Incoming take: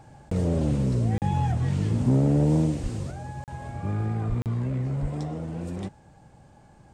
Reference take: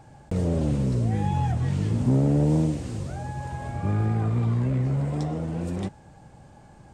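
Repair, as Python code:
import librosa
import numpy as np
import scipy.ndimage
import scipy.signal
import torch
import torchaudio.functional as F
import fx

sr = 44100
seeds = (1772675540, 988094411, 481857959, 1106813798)

y = fx.highpass(x, sr, hz=140.0, slope=24, at=(2.82, 2.94), fade=0.02)
y = fx.highpass(y, sr, hz=140.0, slope=24, at=(4.28, 4.4), fade=0.02)
y = fx.highpass(y, sr, hz=140.0, slope=24, at=(5.01, 5.13), fade=0.02)
y = fx.fix_interpolate(y, sr, at_s=(1.18, 3.44, 4.42), length_ms=38.0)
y = fx.fix_level(y, sr, at_s=3.11, step_db=3.5)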